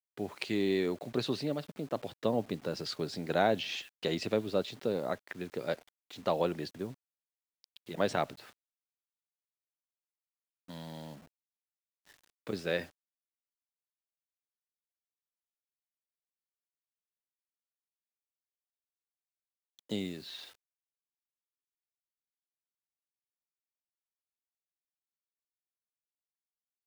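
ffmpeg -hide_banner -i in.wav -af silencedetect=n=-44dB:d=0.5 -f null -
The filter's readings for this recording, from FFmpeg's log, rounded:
silence_start: 6.93
silence_end: 7.64 | silence_duration: 0.71
silence_start: 8.49
silence_end: 10.69 | silence_duration: 2.20
silence_start: 11.16
silence_end: 12.47 | silence_duration: 1.31
silence_start: 12.85
silence_end: 19.79 | silence_duration: 6.93
silence_start: 20.48
silence_end: 26.87 | silence_duration: 6.39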